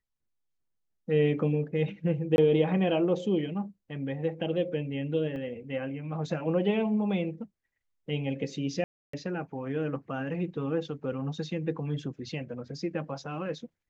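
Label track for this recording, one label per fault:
2.360000	2.380000	gap 21 ms
5.360000	5.360000	gap 2.2 ms
8.840000	9.130000	gap 0.294 s

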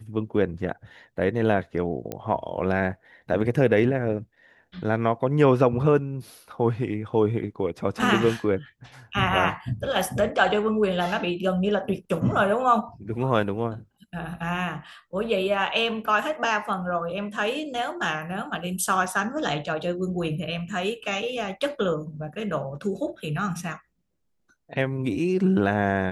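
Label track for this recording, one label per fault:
2.120000	2.120000	pop -16 dBFS

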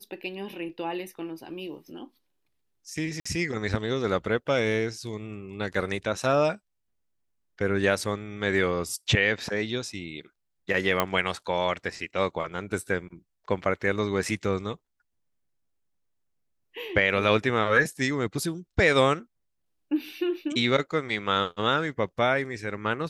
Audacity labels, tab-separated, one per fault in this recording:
3.200000	3.250000	gap 55 ms
11.000000	11.000000	pop -8 dBFS

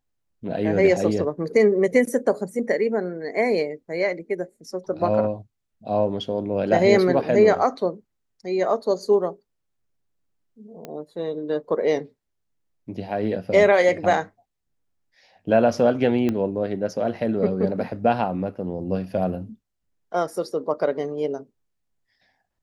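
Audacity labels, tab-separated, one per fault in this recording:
10.850000	10.850000	pop -20 dBFS
16.290000	16.290000	pop -13 dBFS

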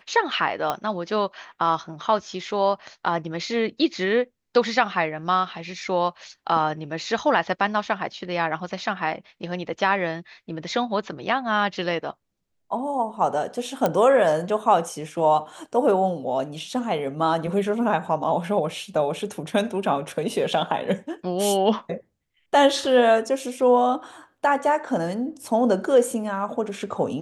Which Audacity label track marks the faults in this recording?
0.700000	0.700000	pop -11 dBFS
13.860000	13.860000	pop -8 dBFS

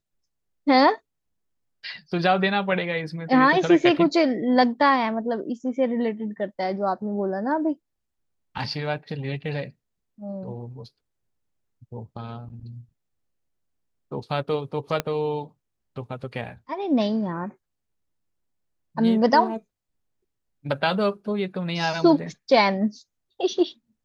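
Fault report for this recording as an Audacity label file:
15.000000	15.000000	pop -9 dBFS

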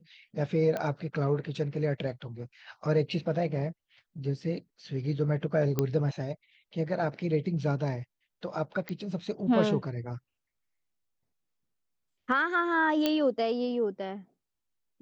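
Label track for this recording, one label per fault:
0.770000	0.770000	pop -19 dBFS
5.790000	5.790000	pop -13 dBFS
8.890000	8.890000	pop -22 dBFS
13.060000	13.060000	pop -13 dBFS

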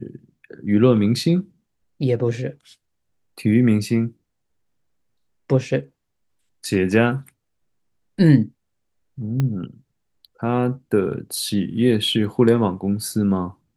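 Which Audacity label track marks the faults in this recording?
9.400000	9.400000	pop -11 dBFS

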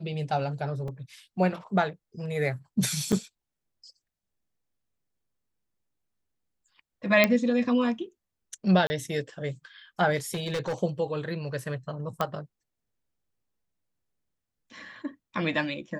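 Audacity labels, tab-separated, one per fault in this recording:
0.880000	0.880000	gap 2.9 ms
3.120000	3.130000	gap 5.5 ms
7.240000	7.240000	pop -6 dBFS
8.870000	8.900000	gap 30 ms
10.300000	10.740000	clipped -26 dBFS
12.210000	12.210000	pop -13 dBFS

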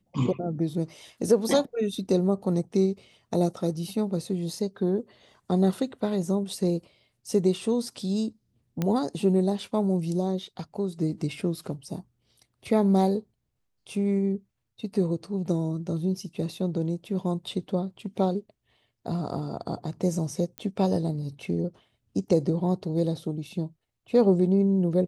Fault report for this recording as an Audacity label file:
8.820000	8.820000	pop -14 dBFS
20.580000	20.580000	pop -18 dBFS

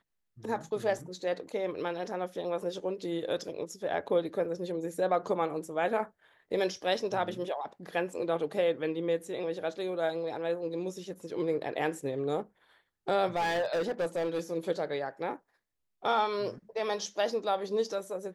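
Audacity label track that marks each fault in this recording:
13.350000	14.410000	clipped -26.5 dBFS

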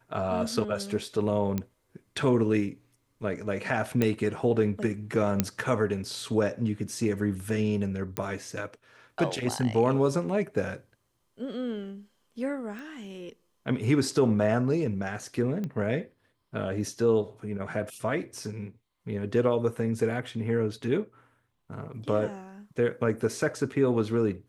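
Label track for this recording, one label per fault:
1.580000	1.580000	pop -16 dBFS
4.020000	4.020000	pop -12 dBFS
5.400000	5.400000	pop -8 dBFS
8.170000	8.170000	pop -14 dBFS
12.790000	12.790000	pop
15.640000	15.640000	pop -22 dBFS

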